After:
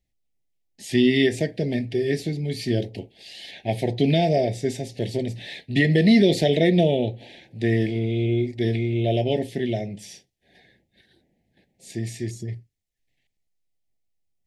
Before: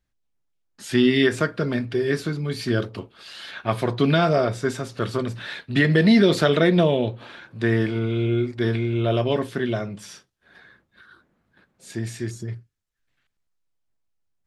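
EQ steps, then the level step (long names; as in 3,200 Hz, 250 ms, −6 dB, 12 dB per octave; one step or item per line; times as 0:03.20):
Chebyshev band-stop filter 790–1,900 Hz, order 3
0.0 dB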